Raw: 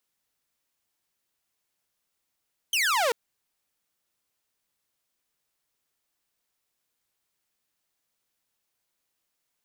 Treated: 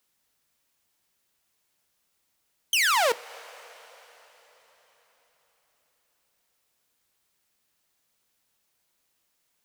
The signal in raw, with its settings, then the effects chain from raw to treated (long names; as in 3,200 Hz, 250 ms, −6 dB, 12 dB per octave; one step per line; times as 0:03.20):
single falling chirp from 3,200 Hz, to 440 Hz, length 0.39 s saw, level −19 dB
coupled-rooms reverb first 0.29 s, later 4.5 s, from −18 dB, DRR 14.5 dB
in parallel at −1 dB: downward compressor, threshold −34 dBFS